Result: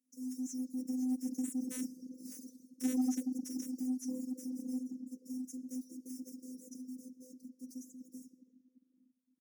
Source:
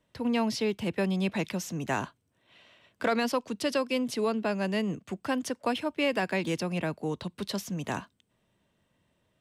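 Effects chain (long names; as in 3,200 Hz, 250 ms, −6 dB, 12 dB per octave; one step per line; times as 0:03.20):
one scale factor per block 3 bits
source passing by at 0:02.30, 32 m/s, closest 2.5 metres
Chebyshev band-stop filter 340–4,600 Hz, order 5
comb filter 4.6 ms, depth 70%
rectangular room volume 2,700 cubic metres, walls mixed, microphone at 1.6 metres
in parallel at +3 dB: downward compressor 6 to 1, threshold −58 dBFS, peak gain reduction 19 dB
on the sum: phases set to zero 208 Hz
high-pass filter 160 Hz 12 dB per octave
soft clipping −36 dBFS, distortion −21 dB
reverb reduction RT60 0.77 s
pitch shifter +3.5 semitones
parametric band 1,900 Hz +8.5 dB 0.78 octaves
level +13 dB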